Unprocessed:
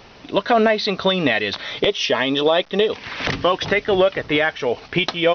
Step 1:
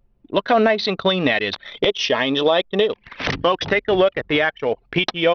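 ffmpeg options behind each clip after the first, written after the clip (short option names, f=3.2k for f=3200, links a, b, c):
-af "anlmdn=251"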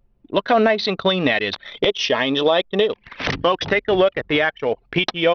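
-af anull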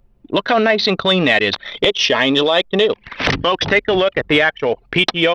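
-filter_complex "[0:a]acrossover=split=1400[a][b];[a]alimiter=limit=-15dB:level=0:latency=1:release=31[c];[c][b]amix=inputs=2:normalize=0,acontrast=25,volume=1.5dB"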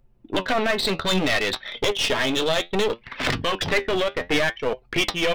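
-af "flanger=delay=7.8:depth=5.2:regen=63:speed=0.63:shape=sinusoidal,aeval=exprs='clip(val(0),-1,0.0531)':c=same"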